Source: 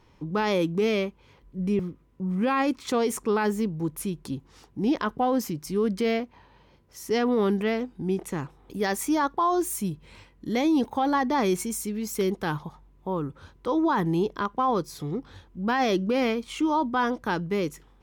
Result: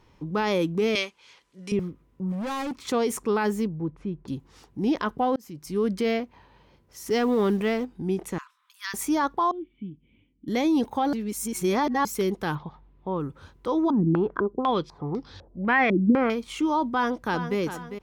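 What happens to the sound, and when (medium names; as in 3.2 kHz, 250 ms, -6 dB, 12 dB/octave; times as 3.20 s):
0.95–1.72 s: frequency weighting ITU-R 468
2.32–2.88 s: hard clipper -28.5 dBFS
3.67–4.28 s: tape spacing loss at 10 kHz 41 dB
5.36–5.80 s: fade in
7.06–7.85 s: companding laws mixed up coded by mu
8.38–8.94 s: rippled Chebyshev high-pass 1 kHz, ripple 3 dB
9.51–10.48 s: cascade formant filter i
11.13–12.05 s: reverse
12.55–13.20 s: low-pass 4.2 kHz 24 dB/octave
13.90–16.30 s: step-sequenced low-pass 4 Hz 260–5000 Hz
16.93–17.58 s: echo throw 400 ms, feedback 40%, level -10 dB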